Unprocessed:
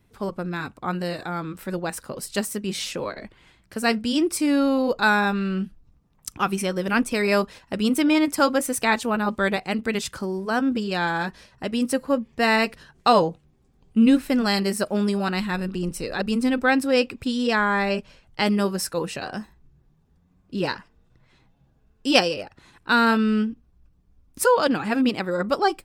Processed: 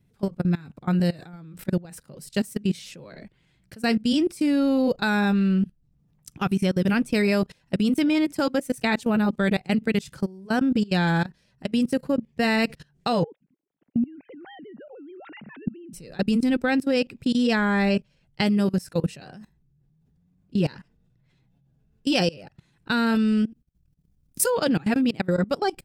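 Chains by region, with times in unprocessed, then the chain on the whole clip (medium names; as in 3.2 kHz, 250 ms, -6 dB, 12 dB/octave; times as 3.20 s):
13.23–15.93 s: formants replaced by sine waves + tilt EQ -1.5 dB/octave + compression 10:1, threshold -23 dBFS
23.15–24.50 s: treble shelf 5.1 kHz +12 dB + transient shaper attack +4 dB, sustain -10 dB
whole clip: peaking EQ 150 Hz +12 dB 0.87 oct; level held to a coarse grid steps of 22 dB; peaking EQ 1.1 kHz -7 dB 0.75 oct; trim +2 dB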